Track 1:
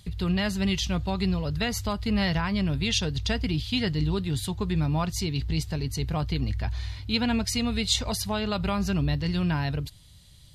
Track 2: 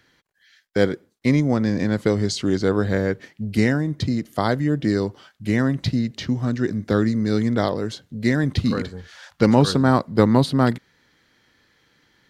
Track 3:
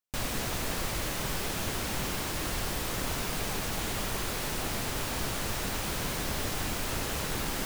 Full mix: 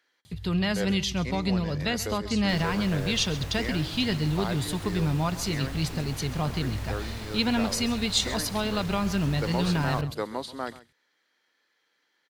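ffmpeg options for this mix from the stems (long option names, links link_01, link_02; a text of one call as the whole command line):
ffmpeg -i stem1.wav -i stem2.wav -i stem3.wav -filter_complex "[0:a]highpass=86,adelay=250,volume=0dB,asplit=2[link_01][link_02];[link_02]volume=-16dB[link_03];[1:a]highpass=460,volume=-10.5dB,asplit=2[link_04][link_05];[link_05]volume=-18dB[link_06];[2:a]highshelf=frequency=6300:gain=-9,adelay=2350,volume=-7dB,asplit=2[link_07][link_08];[link_08]volume=-17.5dB[link_09];[link_03][link_06][link_09]amix=inputs=3:normalize=0,aecho=0:1:133:1[link_10];[link_01][link_04][link_07][link_10]amix=inputs=4:normalize=0" out.wav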